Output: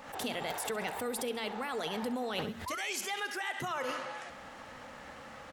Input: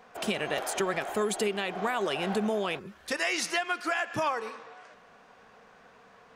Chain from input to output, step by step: treble shelf 7.3 kHz +6 dB; hum notches 50/100/150/200 Hz; tape speed +15%; on a send: feedback delay 67 ms, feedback 44%, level -17 dB; on the sum: painted sound rise, 2.66–2.93 s, 940–2500 Hz -31 dBFS; reverse; compression 16:1, threshold -40 dBFS, peak gain reduction 17.5 dB; reverse; peaking EQ 65 Hz +9.5 dB 2.8 oct; swell ahead of each attack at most 74 dB/s; trim +6.5 dB

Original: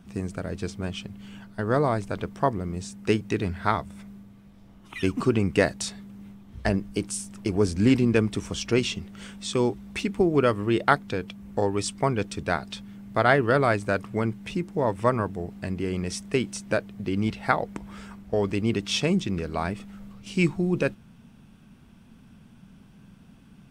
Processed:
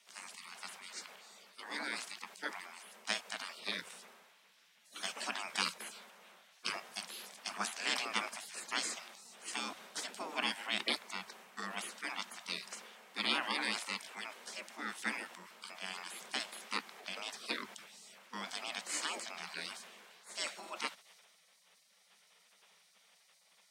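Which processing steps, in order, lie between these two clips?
frequency weighting A; spectral gate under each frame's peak -20 dB weak; high-pass 77 Hz 24 dB/octave; transient shaper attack -1 dB, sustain +6 dB; frequency shift +97 Hz; trim +3.5 dB

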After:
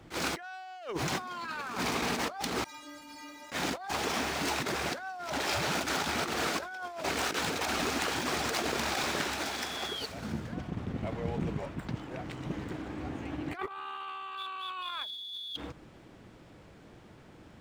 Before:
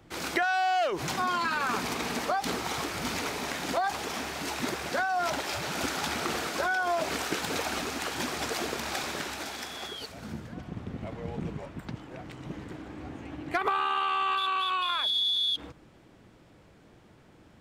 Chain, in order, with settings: median filter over 3 samples; compressor with a negative ratio -33 dBFS, ratio -0.5; 2.64–3.52 s: inharmonic resonator 290 Hz, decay 0.49 s, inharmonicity 0.008; attacks held to a fixed rise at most 260 dB/s

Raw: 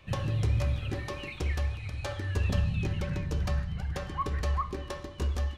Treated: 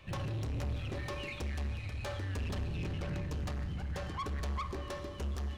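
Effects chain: saturation -34 dBFS, distortion -8 dB; reverberation RT60 4.1 s, pre-delay 14 ms, DRR 11.5 dB

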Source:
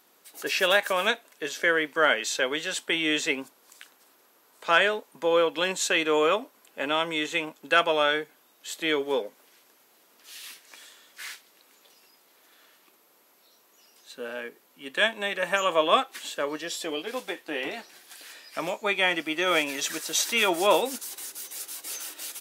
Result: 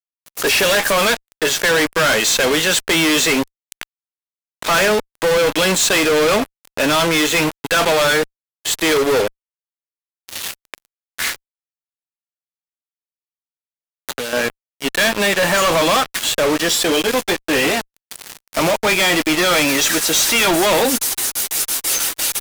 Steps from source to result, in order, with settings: dynamic bell 180 Hz, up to +4 dB, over -47 dBFS, Q 1.8; fuzz box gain 44 dB, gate -39 dBFS; 11.29–14.33 s: three bands compressed up and down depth 100%

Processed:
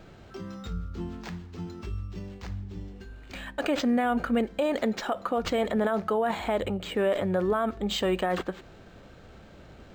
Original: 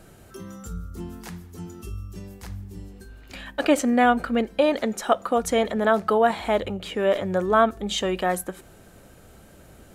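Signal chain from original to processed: peak limiter -17.5 dBFS, peak gain reduction 11 dB; decimation joined by straight lines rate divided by 4×

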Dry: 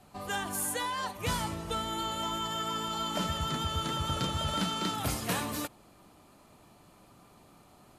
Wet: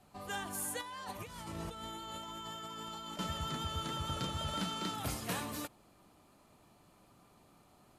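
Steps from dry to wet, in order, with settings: 0.81–3.19 s: compressor with a negative ratio -39 dBFS, ratio -1; trim -6 dB

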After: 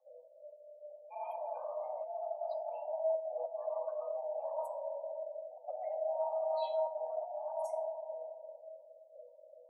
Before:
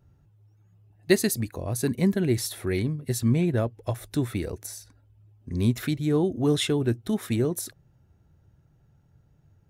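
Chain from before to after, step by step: level held to a coarse grid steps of 19 dB; simulated room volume 1400 m³, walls mixed, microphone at 2.7 m; slow attack 196 ms; tilt EQ -3.5 dB/octave; spectral gate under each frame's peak -30 dB strong; reverse; compression 10:1, threshold -29 dBFS, peak gain reduction 17 dB; reverse; treble shelf 5 kHz +7.5 dB; feedback comb 150 Hz, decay 0.31 s, harmonics odd, mix 90%; frequency shift +490 Hz; trim +7 dB

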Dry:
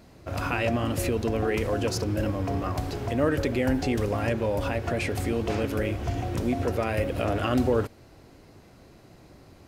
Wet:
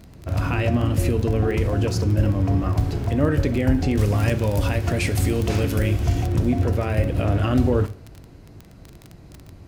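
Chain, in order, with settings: tone controls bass +10 dB, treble -1 dB; reverberation, pre-delay 3 ms, DRR 11 dB; crackle 19 per s -27 dBFS; 3.99–6.27 s: treble shelf 3.1 kHz +11 dB

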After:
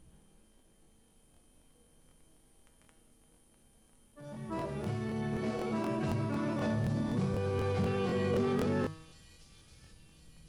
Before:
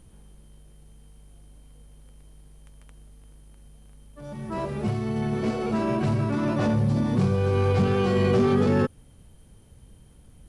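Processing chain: hum notches 50/100/150 Hz; in parallel at -1 dB: peak limiter -20.5 dBFS, peak gain reduction 10 dB; on the sum: feedback comb 160 Hz, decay 0.85 s, harmonics all, mix 80%; feedback echo behind a high-pass 1062 ms, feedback 54%, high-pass 5.3 kHz, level -5 dB; crackling interface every 0.25 s, samples 1024, repeat, from 0.57 s

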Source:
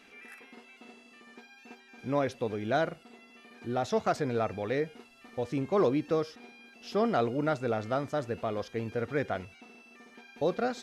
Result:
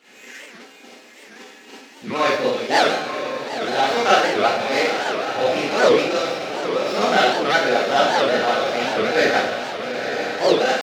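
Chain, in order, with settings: median filter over 15 samples; frequency weighting D; harmonic-percussive split harmonic -14 dB; echo that smears into a reverb 940 ms, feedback 54%, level -6.5 dB; Schroeder reverb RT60 0.77 s, combs from 31 ms, DRR -9.5 dB; pitch shift +1 st; warped record 78 rpm, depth 250 cents; trim +5.5 dB

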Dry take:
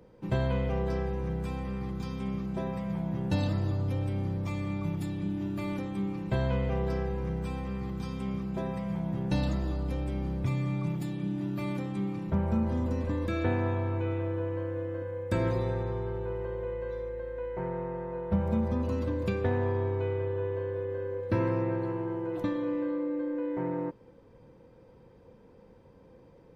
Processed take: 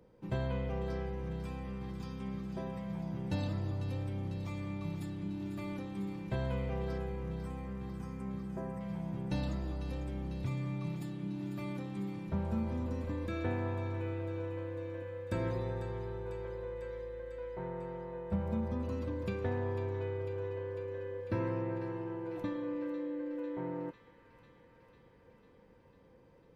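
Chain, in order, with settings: 6.98–8.81 s: Butterworth band-stop 3.5 kHz, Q 0.81; on a send: feedback echo behind a high-pass 498 ms, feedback 73%, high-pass 1.7 kHz, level -9 dB; on the sum: trim -6.5 dB

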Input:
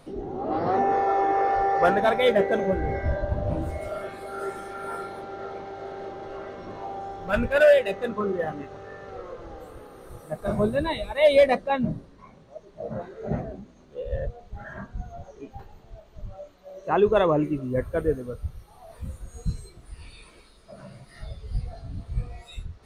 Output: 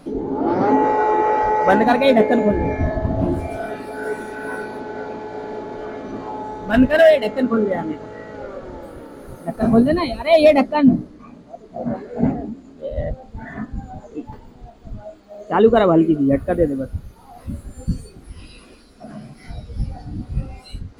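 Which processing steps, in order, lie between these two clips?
peaking EQ 240 Hz +12 dB 0.86 oct; speed mistake 44.1 kHz file played as 48 kHz; trim +4 dB

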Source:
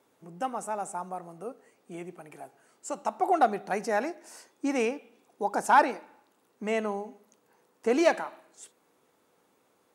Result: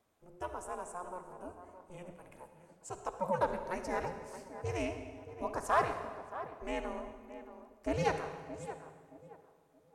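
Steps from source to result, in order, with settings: ring modulator 180 Hz; tape echo 623 ms, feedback 34%, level -10 dB, low-pass 1.2 kHz; reverberation RT60 1.6 s, pre-delay 51 ms, DRR 8.5 dB; trim -6 dB

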